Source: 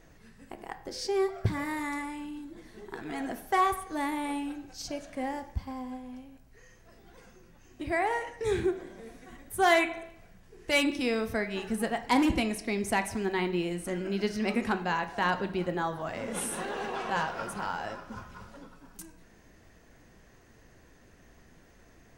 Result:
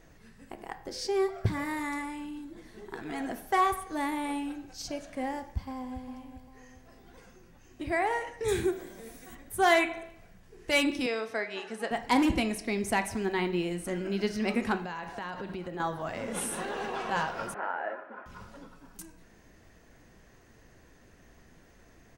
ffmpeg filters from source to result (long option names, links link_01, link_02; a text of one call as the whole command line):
ffmpeg -i in.wav -filter_complex "[0:a]asplit=2[link_01][link_02];[link_02]afade=type=in:start_time=5.41:duration=0.01,afade=type=out:start_time=6.08:duration=0.01,aecho=0:1:400|800|1200|1600|2000:0.281838|0.126827|0.0570723|0.0256825|0.0115571[link_03];[link_01][link_03]amix=inputs=2:normalize=0,asettb=1/sr,asplit=3[link_04][link_05][link_06];[link_04]atrim=end=8.484[link_07];[link_05]atrim=start=8.48:end=9.35,asetpts=PTS-STARTPTS,afade=type=in:duration=0.004:curve=qsin,afade=type=out:start_time=0.866:duration=0.004:curve=qsin,aemphasis=mode=production:type=50fm[link_08];[link_06]atrim=start=9.346[link_09];[link_07][link_08]acrossfade=duration=0.004:curve1=hsin:curve2=qsin[link_10];[link_10][link_09]acrossfade=duration=0.004:curve1=qsin:curve2=hsin,asettb=1/sr,asplit=3[link_11][link_12][link_13];[link_11]atrim=end=11.064[link_14];[link_12]atrim=start=11.06:end=11.91,asetpts=PTS-STARTPTS,afade=type=in:duration=0.004:curve=qsin,afade=type=out:start_time=0.846:duration=0.004:curve=qsin,highpass=410,lowpass=6800[link_15];[link_13]atrim=start=11.906[link_16];[link_14][link_15]acrossfade=duration=0.004:curve1=hsin:curve2=qsin[link_17];[link_17][link_16]acrossfade=duration=0.004:curve1=qsin:curve2=hsin,asettb=1/sr,asplit=3[link_18][link_19][link_20];[link_18]atrim=end=14.774[link_21];[link_19]atrim=start=14.77:end=15.8,asetpts=PTS-STARTPTS,afade=type=in:duration=0.004:curve=qsin,afade=type=out:start_time=1.026:duration=0.004:curve=qsin,acompressor=threshold=-33dB:ratio=12:attack=3.2:release=140:knee=1:detection=peak[link_22];[link_20]atrim=start=15.796[link_23];[link_21][link_22]acrossfade=duration=0.004:curve1=hsin:curve2=qsin[link_24];[link_24][link_23]acrossfade=duration=0.004:curve1=qsin:curve2=hsin,asettb=1/sr,asplit=3[link_25][link_26][link_27];[link_25]atrim=end=17.544[link_28];[link_26]atrim=start=17.54:end=18.26,asetpts=PTS-STARTPTS,afade=type=in:duration=0.004:curve=qsin,afade=type=out:start_time=0.716:duration=0.004:curve=qsin,highpass=frequency=300:width=0.5412,highpass=frequency=300:width=1.3066,equalizer=frequency=620:width_type=q:width=4:gain=6,equalizer=frequency=1100:width_type=q:width=4:gain=-4,equalizer=frequency=1700:width_type=q:width=4:gain=5,lowpass=frequency=2200:width=0.5412,lowpass=frequency=2200:width=1.3066[link_29];[link_27]atrim=start=18.256[link_30];[link_28][link_29]acrossfade=duration=0.004:curve1=hsin:curve2=qsin[link_31];[link_31][link_30]acrossfade=duration=0.004:curve1=qsin:curve2=hsin" out.wav